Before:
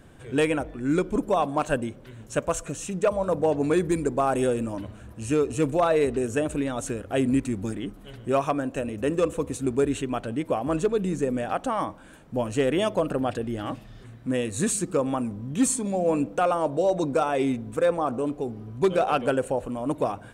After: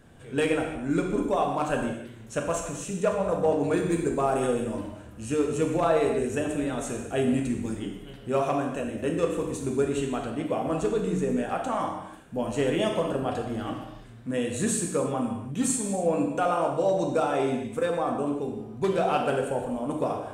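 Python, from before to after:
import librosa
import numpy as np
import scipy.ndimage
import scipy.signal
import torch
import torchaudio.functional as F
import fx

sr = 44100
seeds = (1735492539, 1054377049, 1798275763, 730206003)

y = fx.hum_notches(x, sr, base_hz=60, count=2)
y = fx.rev_gated(y, sr, seeds[0], gate_ms=340, shape='falling', drr_db=0.5)
y = F.gain(torch.from_numpy(y), -4.0).numpy()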